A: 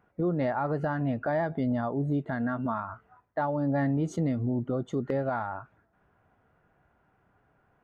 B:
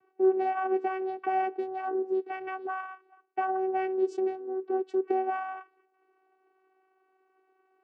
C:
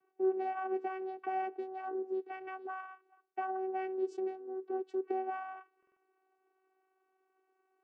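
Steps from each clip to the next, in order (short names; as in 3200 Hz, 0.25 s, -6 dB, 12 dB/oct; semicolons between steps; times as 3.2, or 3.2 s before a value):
vocoder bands 8, saw 378 Hz
HPF 140 Hz 24 dB/oct; stuck buffer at 5.78, samples 2048, times 3; gain -7.5 dB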